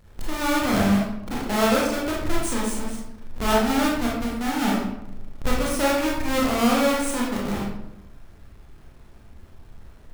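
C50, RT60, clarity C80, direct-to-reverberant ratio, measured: 0.5 dB, 0.90 s, 4.5 dB, -4.5 dB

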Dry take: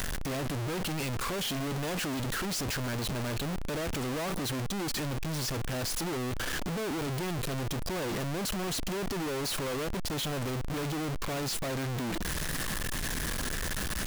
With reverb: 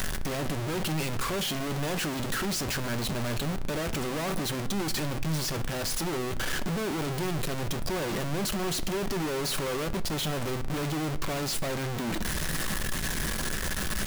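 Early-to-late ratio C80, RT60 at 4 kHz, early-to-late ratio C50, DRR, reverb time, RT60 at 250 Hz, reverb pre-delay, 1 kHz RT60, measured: 20.0 dB, 0.45 s, 17.0 dB, 10.0 dB, 0.65 s, 1.2 s, 5 ms, 0.60 s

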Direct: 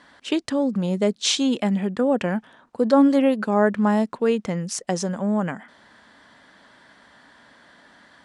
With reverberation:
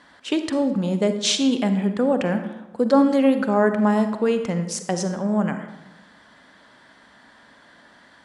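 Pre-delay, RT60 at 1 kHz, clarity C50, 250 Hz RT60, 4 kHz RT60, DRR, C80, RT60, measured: 38 ms, 0.95 s, 8.5 dB, 1.1 s, 0.65 s, 8.0 dB, 11.0 dB, 1.0 s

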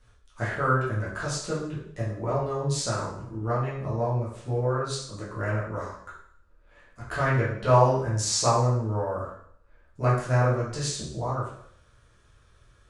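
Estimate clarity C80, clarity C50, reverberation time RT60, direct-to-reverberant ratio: 6.5 dB, 3.0 dB, 0.65 s, -9.0 dB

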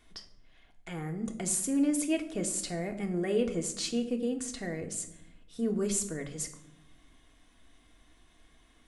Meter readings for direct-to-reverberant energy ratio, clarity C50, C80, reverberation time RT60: 3.5 dB, 11.5 dB, 14.5 dB, 0.85 s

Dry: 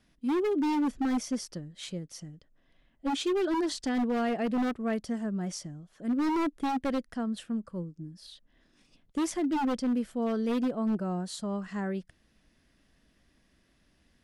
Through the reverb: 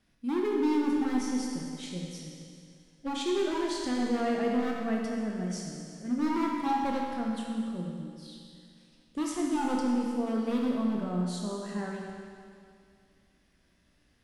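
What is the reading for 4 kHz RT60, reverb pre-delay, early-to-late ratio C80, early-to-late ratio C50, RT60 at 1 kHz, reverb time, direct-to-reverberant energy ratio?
2.2 s, 17 ms, 1.5 dB, 0.0 dB, 2.3 s, 2.3 s, -1.5 dB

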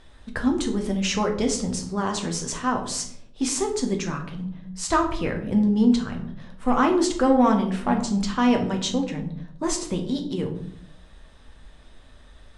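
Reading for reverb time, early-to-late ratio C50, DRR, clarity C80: 0.65 s, 9.0 dB, 3.0 dB, 12.5 dB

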